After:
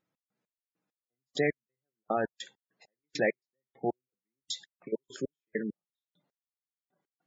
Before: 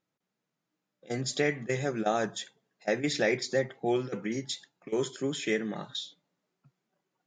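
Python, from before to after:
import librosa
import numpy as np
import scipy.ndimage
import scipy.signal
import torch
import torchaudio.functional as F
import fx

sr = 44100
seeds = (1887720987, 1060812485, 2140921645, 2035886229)

y = fx.step_gate(x, sr, bpm=100, pattern='x.x..x...x....x.', floor_db=-60.0, edge_ms=4.5)
y = fx.spec_gate(y, sr, threshold_db=-20, keep='strong')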